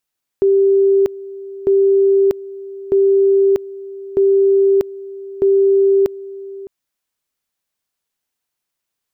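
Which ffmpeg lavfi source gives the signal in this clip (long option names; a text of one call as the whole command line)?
ffmpeg -f lavfi -i "aevalsrc='pow(10,(-9-18.5*gte(mod(t,1.25),0.64))/20)*sin(2*PI*392*t)':duration=6.25:sample_rate=44100" out.wav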